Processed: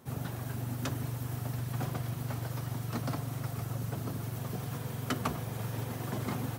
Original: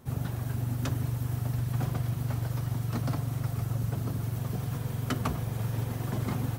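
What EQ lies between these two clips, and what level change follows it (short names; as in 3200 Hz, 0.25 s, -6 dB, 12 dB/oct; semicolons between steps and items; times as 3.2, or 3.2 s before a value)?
HPF 200 Hz 6 dB/oct; 0.0 dB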